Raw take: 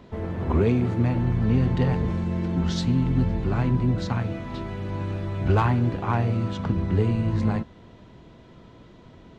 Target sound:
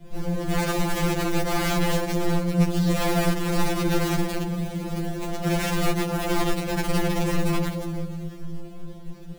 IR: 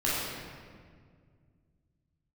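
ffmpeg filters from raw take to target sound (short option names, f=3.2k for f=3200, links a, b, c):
-filter_complex "[0:a]asplit=3[a][b][c];[a]afade=t=out:st=1.68:d=0.02[d];[b]adynamicequalizer=threshold=0.0158:dfrequency=110:dqfactor=3.3:tfrequency=110:tqfactor=3.3:attack=5:release=100:ratio=0.375:range=2:mode=cutabove:tftype=bell,afade=t=in:st=1.68:d=0.02,afade=t=out:st=3.93:d=0.02[e];[c]afade=t=in:st=3.93:d=0.02[f];[d][e][f]amix=inputs=3:normalize=0[g];[1:a]atrim=start_sample=2205,asetrate=74970,aresample=44100[h];[g][h]afir=irnorm=-1:irlink=0,acrusher=bits=3:mode=log:mix=0:aa=0.000001,acrossover=split=170[i][j];[j]acompressor=threshold=-19dB:ratio=3[k];[i][k]amix=inputs=2:normalize=0,flanger=delay=6.2:depth=2.6:regen=83:speed=0.41:shape=sinusoidal,aeval=exprs='(mod(5.62*val(0)+1,2)-1)/5.62':c=same,asuperstop=centerf=970:order=12:qfactor=7.5,lowshelf=f=240:g=11.5,volume=18dB,asoftclip=hard,volume=-18dB,afftfilt=real='re*2.83*eq(mod(b,8),0)':imag='im*2.83*eq(mod(b,8),0)':win_size=2048:overlap=0.75"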